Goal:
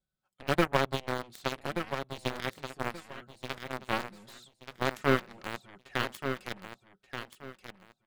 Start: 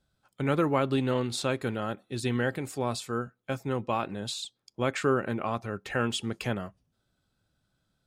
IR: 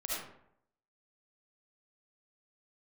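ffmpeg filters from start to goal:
-filter_complex "[0:a]aecho=1:1:5.4:0.58,aeval=exprs='0.266*(cos(1*acos(clip(val(0)/0.266,-1,1)))-cos(1*PI/2))+0.0944*(cos(3*acos(clip(val(0)/0.266,-1,1)))-cos(3*PI/2))':c=same,asplit=2[s0][s1];[s1]acrusher=bits=3:dc=4:mix=0:aa=0.000001,volume=0.355[s2];[s0][s2]amix=inputs=2:normalize=0,asoftclip=type=tanh:threshold=0.126,aecho=1:1:1179|2358|3537:0.398|0.0916|0.0211,volume=2.37"

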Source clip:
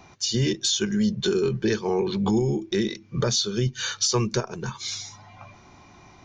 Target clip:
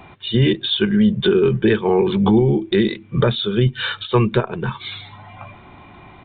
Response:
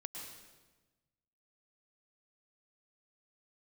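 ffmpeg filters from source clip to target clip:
-af "aresample=8000,aresample=44100,volume=2.51"

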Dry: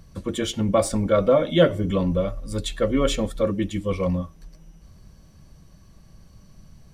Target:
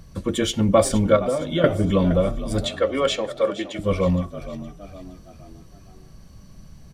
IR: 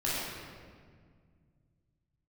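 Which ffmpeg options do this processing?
-filter_complex "[0:a]asettb=1/sr,asplit=3[s0][s1][s2];[s0]atrim=end=1.164[s3];[s1]atrim=start=1.16:end=1.64,asetpts=PTS-STARTPTS,afade=t=in:d=0.004:c=qsin,afade=t=out:st=0.476:d=0.004:c=qsin,acompressor=threshold=0.0562:ratio=5[s4];[s2]atrim=start=1.636[s5];[s3][s4]acrossfade=d=0.004:c1=hsin:c2=qsin[s6];[s6][s5]acrossfade=d=0.004:c1=qsin:c2=hsin,asettb=1/sr,asplit=3[s7][s8][s9];[s7]atrim=end=2.654[s10];[s8]atrim=start=2.65:end=3.79,asetpts=PTS-STARTPTS,afade=t=in:d=0.004:c=qsin,afade=t=out:st=1.136:d=0.004:c=qsin,acrossover=split=350 6400:gain=0.0631 1 0.224[s11][s12][s13];[s11][s12][s13]amix=inputs=3:normalize=0[s14];[s9]atrim=start=3.786[s15];[s10][s14]acrossfade=d=0.004:c1=hsin:c2=qsin[s16];[s16][s15]acrossfade=d=0.004:c1=qsin:c2=hsin,asplit=5[s17][s18][s19][s20][s21];[s18]adelay=466,afreqshift=49,volume=0.2[s22];[s19]adelay=932,afreqshift=98,volume=0.0881[s23];[s20]adelay=1398,afreqshift=147,volume=0.0385[s24];[s21]adelay=1864,afreqshift=196,volume=0.017[s25];[s17][s22][s23][s24][s25]amix=inputs=5:normalize=0,volume=1.5"

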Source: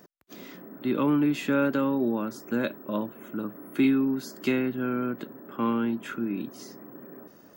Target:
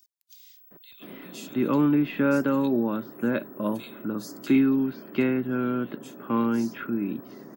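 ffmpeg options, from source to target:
-filter_complex "[0:a]lowshelf=f=200:g=3,acrossover=split=3400[s0][s1];[s0]adelay=710[s2];[s2][s1]amix=inputs=2:normalize=0,volume=1.12"

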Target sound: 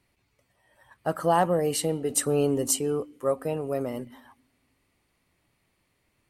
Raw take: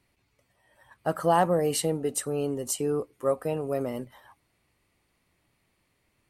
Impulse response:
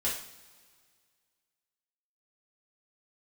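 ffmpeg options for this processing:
-filter_complex "[0:a]asettb=1/sr,asplit=3[s0][s1][s2];[s0]atrim=end=2.104[s3];[s1]atrim=start=2.1:end=2.79,asetpts=PTS-STARTPTS,afade=t=in:d=0.004:c=qsin,afade=t=out:st=0.686:d=0.004:c=qsin,acontrast=36[s4];[s2]atrim=start=2.786[s5];[s3][s4]acrossfade=d=0.004:c1=hsin:c2=qsin[s6];[s6][s5]acrossfade=d=0.004:c1=qsin:c2=hsin,asplit=2[s7][s8];[s8]asplit=3[s9][s10][s11];[s9]bandpass=f=270:t=q:w=8,volume=1[s12];[s10]bandpass=f=2290:t=q:w=8,volume=0.501[s13];[s11]bandpass=f=3010:t=q:w=8,volume=0.355[s14];[s12][s13][s14]amix=inputs=3:normalize=0[s15];[1:a]atrim=start_sample=2205,adelay=113[s16];[s15][s16]afir=irnorm=-1:irlink=0,volume=0.158[s17];[s7][s17]amix=inputs=2:normalize=0"

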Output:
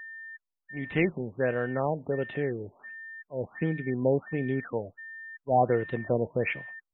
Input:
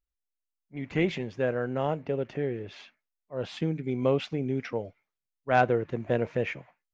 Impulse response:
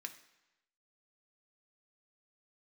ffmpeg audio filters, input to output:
-af "adynamicequalizer=threshold=0.00398:dfrequency=3100:dqfactor=1:tfrequency=3100:tqfactor=1:attack=5:release=100:ratio=0.375:range=3:mode=boostabove:tftype=bell,aeval=exprs='val(0)+0.01*sin(2*PI*1800*n/s)':c=same,afftfilt=real='re*lt(b*sr/1024,940*pow(4100/940,0.5+0.5*sin(2*PI*1.4*pts/sr)))':imag='im*lt(b*sr/1024,940*pow(4100/940,0.5+0.5*sin(2*PI*1.4*pts/sr)))':win_size=1024:overlap=0.75"

